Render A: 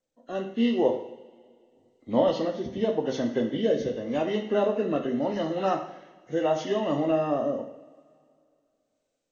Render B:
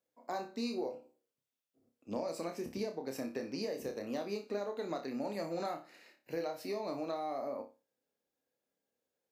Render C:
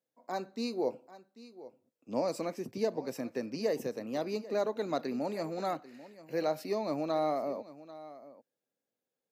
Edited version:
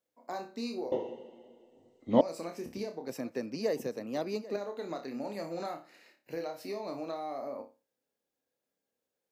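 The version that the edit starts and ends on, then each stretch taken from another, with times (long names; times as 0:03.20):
B
0:00.92–0:02.21: punch in from A
0:03.09–0:04.56: punch in from C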